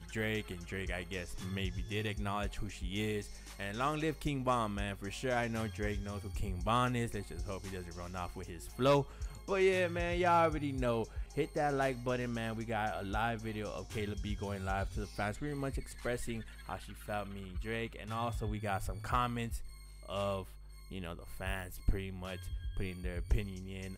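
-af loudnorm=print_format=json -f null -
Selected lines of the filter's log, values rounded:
"input_i" : "-37.4",
"input_tp" : "-19.1",
"input_lra" : "7.5",
"input_thresh" : "-47.5",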